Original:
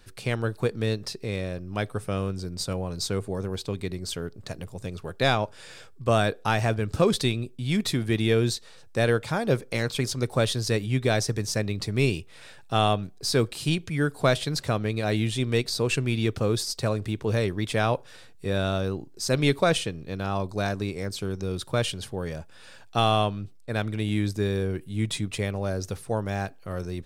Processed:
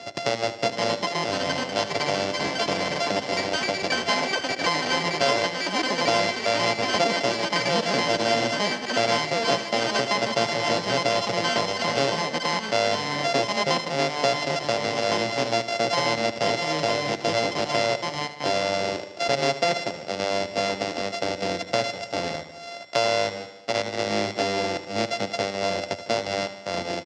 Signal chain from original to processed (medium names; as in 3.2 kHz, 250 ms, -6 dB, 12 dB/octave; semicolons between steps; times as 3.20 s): sorted samples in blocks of 64 samples; bass shelf 240 Hz -7.5 dB; in parallel at -7 dB: Schmitt trigger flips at -31.5 dBFS; on the sum: ever faster or slower copies 607 ms, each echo +7 st, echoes 3; cabinet simulation 180–6100 Hz, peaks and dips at 570 Hz +5 dB, 1.3 kHz -8 dB, 5.1 kHz +6 dB; on a send: feedback delay 76 ms, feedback 54%, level -13.5 dB; on the sum: three bands compressed up and down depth 70%